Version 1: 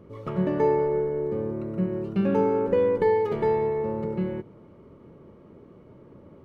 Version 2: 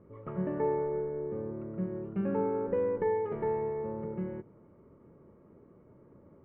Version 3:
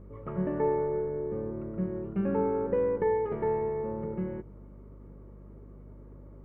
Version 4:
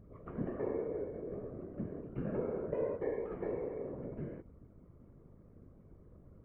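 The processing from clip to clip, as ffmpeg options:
-af "lowpass=f=2100:w=0.5412,lowpass=f=2100:w=1.3066,volume=0.398"
-af "aeval=exprs='val(0)+0.00316*(sin(2*PI*50*n/s)+sin(2*PI*2*50*n/s)/2+sin(2*PI*3*50*n/s)/3+sin(2*PI*4*50*n/s)/4+sin(2*PI*5*50*n/s)/5)':c=same,volume=1.33"
-af "tremolo=f=95:d=0.621,bandreject=f=880:w=12,afftfilt=real='hypot(re,im)*cos(2*PI*random(0))':imag='hypot(re,im)*sin(2*PI*random(1))':win_size=512:overlap=0.75"

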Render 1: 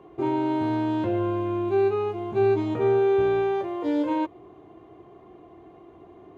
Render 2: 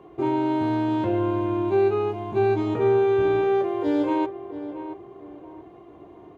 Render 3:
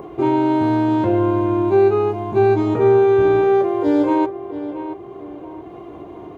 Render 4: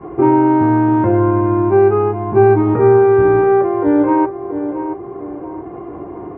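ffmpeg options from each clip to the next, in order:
-filter_complex "[0:a]asplit=2[s0][s1];[s1]adelay=680,lowpass=f=1700:p=1,volume=0.282,asplit=2[s2][s3];[s3]adelay=680,lowpass=f=1700:p=1,volume=0.32,asplit=2[s4][s5];[s5]adelay=680,lowpass=f=1700:p=1,volume=0.32[s6];[s0][s2][s4][s6]amix=inputs=4:normalize=0,volume=1.19"
-af "bandreject=f=1800:w=30,adynamicequalizer=threshold=0.00251:dfrequency=3000:dqfactor=1.6:tfrequency=3000:tqfactor=1.6:attack=5:release=100:ratio=0.375:range=3:mode=cutabove:tftype=bell,acompressor=mode=upward:threshold=0.0178:ratio=2.5,volume=2.11"
-af "lowpass=f=1900:w=0.5412,lowpass=f=1900:w=1.3066,bandreject=f=640:w=12,adynamicequalizer=threshold=0.0501:dfrequency=450:dqfactor=0.7:tfrequency=450:tqfactor=0.7:attack=5:release=100:ratio=0.375:range=2:mode=cutabove:tftype=bell,volume=2.11"

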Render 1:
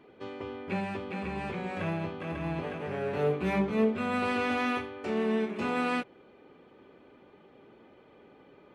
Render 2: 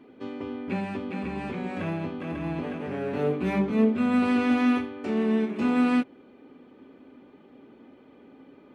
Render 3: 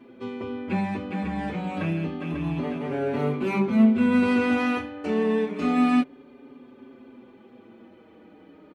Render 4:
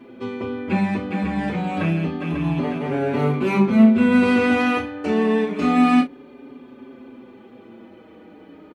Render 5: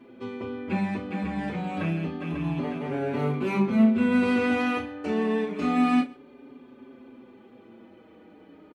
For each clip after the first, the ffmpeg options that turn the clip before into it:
-af "equalizer=f=260:t=o:w=0.45:g=13"
-filter_complex "[0:a]asplit=2[s0][s1];[s1]adelay=5.5,afreqshift=-0.28[s2];[s0][s2]amix=inputs=2:normalize=1,volume=1.88"
-filter_complex "[0:a]asplit=2[s0][s1];[s1]adelay=35,volume=0.316[s2];[s0][s2]amix=inputs=2:normalize=0,volume=1.88"
-af "aecho=1:1:130:0.0708,volume=0.473"

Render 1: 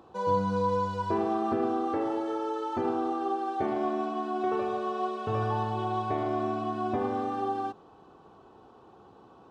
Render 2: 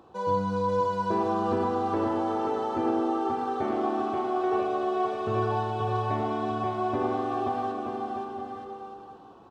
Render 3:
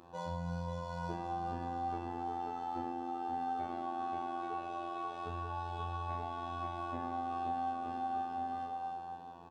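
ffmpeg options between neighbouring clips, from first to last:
-af "aecho=1:1:530|927.5|1226|1449|1617:0.631|0.398|0.251|0.158|0.1"
-filter_complex "[0:a]afftfilt=real='hypot(re,im)*cos(PI*b)':imag='0':win_size=2048:overlap=0.75,acompressor=threshold=0.0141:ratio=4,asplit=2[s0][s1];[s1]adelay=36,volume=0.794[s2];[s0][s2]amix=inputs=2:normalize=0"

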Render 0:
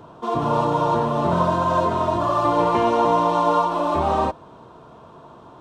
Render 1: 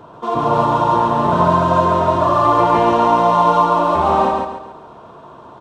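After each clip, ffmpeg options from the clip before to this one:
-filter_complex "[0:a]equalizer=f=1100:w=0.37:g=4.5,asplit=2[s0][s1];[s1]aecho=0:1:138|276|414|552|690:0.708|0.269|0.102|0.0388|0.0148[s2];[s0][s2]amix=inputs=2:normalize=0"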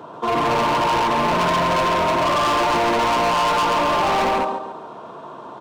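-af "highpass=180,asoftclip=type=hard:threshold=0.1,volume=1.41"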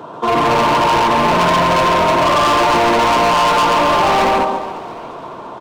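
-filter_complex "[0:a]asplit=6[s0][s1][s2][s3][s4][s5];[s1]adelay=347,afreqshift=-37,volume=0.126[s6];[s2]adelay=694,afreqshift=-74,volume=0.0692[s7];[s3]adelay=1041,afreqshift=-111,volume=0.038[s8];[s4]adelay=1388,afreqshift=-148,volume=0.0209[s9];[s5]adelay=1735,afreqshift=-185,volume=0.0115[s10];[s0][s6][s7][s8][s9][s10]amix=inputs=6:normalize=0,volume=1.88"

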